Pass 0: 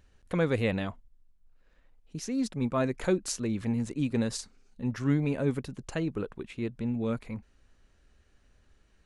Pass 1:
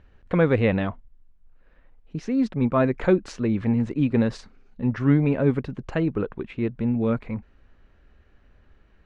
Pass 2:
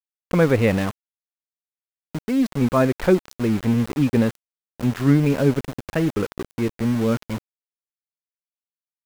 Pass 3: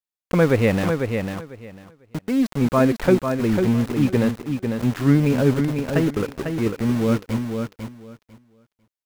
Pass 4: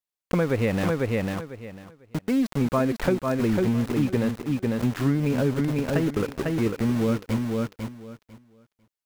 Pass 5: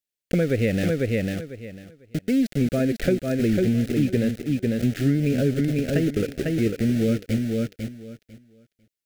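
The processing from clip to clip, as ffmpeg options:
ffmpeg -i in.wav -af "lowpass=2400,volume=7.5dB" out.wav
ffmpeg -i in.wav -af "aeval=exprs='val(0)*gte(abs(val(0)),0.0316)':channel_layout=same,volume=2.5dB" out.wav
ffmpeg -i in.wav -af "aecho=1:1:498|996|1494:0.501|0.0902|0.0162" out.wav
ffmpeg -i in.wav -af "acompressor=threshold=-19dB:ratio=6" out.wav
ffmpeg -i in.wav -af "asuperstop=centerf=1000:order=4:qfactor=1,volume=2dB" out.wav

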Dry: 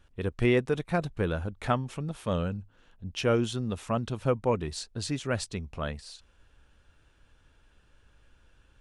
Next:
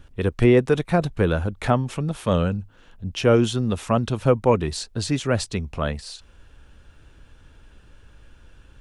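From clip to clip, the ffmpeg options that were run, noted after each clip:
ffmpeg -i in.wav -filter_complex "[0:a]acrossover=split=440|920[link_01][link_02][link_03];[link_01]acompressor=mode=upward:threshold=-49dB:ratio=2.5[link_04];[link_03]alimiter=level_in=3.5dB:limit=-24dB:level=0:latency=1:release=86,volume=-3.5dB[link_05];[link_04][link_02][link_05]amix=inputs=3:normalize=0,volume=8.5dB" out.wav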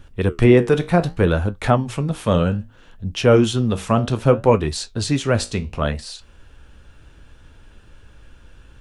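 ffmpeg -i in.wav -af "flanger=delay=8.7:depth=9.9:regen=-66:speed=0.64:shape=sinusoidal,volume=7.5dB" out.wav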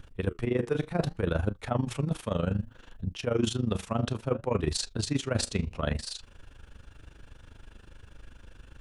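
ffmpeg -i in.wav -af "areverse,acompressor=threshold=-21dB:ratio=12,areverse,tremolo=f=25:d=0.824" out.wav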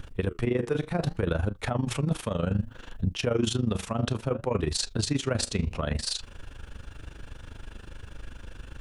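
ffmpeg -i in.wav -af "alimiter=limit=-23.5dB:level=0:latency=1:release=166,volume=7.5dB" out.wav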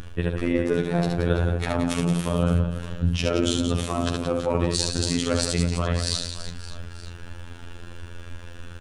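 ffmpeg -i in.wav -af "aecho=1:1:70|175|332.5|568.8|923.1:0.631|0.398|0.251|0.158|0.1,afftfilt=real='hypot(re,im)*cos(PI*b)':imag='0':win_size=2048:overlap=0.75,volume=6dB" out.wav

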